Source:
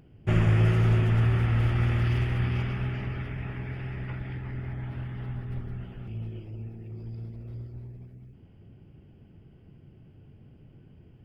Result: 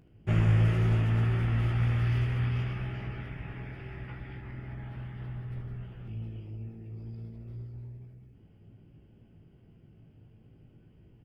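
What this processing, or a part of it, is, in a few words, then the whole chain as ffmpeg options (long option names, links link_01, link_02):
slapback doubling: -filter_complex "[0:a]asplit=3[link_01][link_02][link_03];[link_02]adelay=18,volume=-5dB[link_04];[link_03]adelay=75,volume=-9.5dB[link_05];[link_01][link_04][link_05]amix=inputs=3:normalize=0,volume=-5.5dB"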